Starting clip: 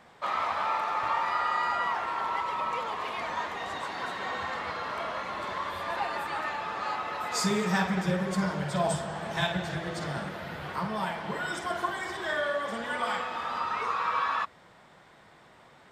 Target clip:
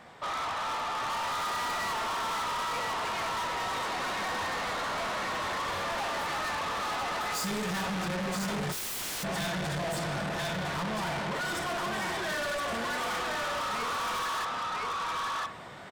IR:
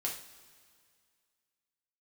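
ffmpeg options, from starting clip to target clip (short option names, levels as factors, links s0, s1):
-filter_complex "[0:a]asettb=1/sr,asplit=3[s0][s1][s2];[s0]atrim=end=1.684[s3];[s1]atrim=start=1.68:end=2.43,asetpts=PTS-STARTPTS,afade=t=in:d=0.004:c=qsin,afade=t=out:st=0.746:d=0.004:c=qsin,aecho=1:1:4.6:0.52,atrim=end_sample=33075[s4];[s2]atrim=start=2.426[s5];[s3][s4]acrossfade=d=0.004:c1=hsin:c2=qsin[s6];[s6][s5]acrossfade=d=0.004:c1=qsin:c2=hsin,aecho=1:1:1011:0.562,asplit=2[s7][s8];[1:a]atrim=start_sample=2205,asetrate=88200,aresample=44100[s9];[s8][s9]afir=irnorm=-1:irlink=0,volume=0.596[s10];[s7][s10]amix=inputs=2:normalize=0,asplit=3[s11][s12][s13];[s11]afade=t=out:st=8.71:d=0.02[s14];[s12]aeval=exprs='(mod(63.1*val(0)+1,2)-1)/63.1':c=same,afade=t=in:st=8.71:d=0.02,afade=t=out:st=9.23:d=0.02[s15];[s13]afade=t=in:st=9.23:d=0.02[s16];[s14][s15][s16]amix=inputs=3:normalize=0,dynaudnorm=f=310:g=7:m=1.88,asoftclip=type=tanh:threshold=0.0224,volume=1.26"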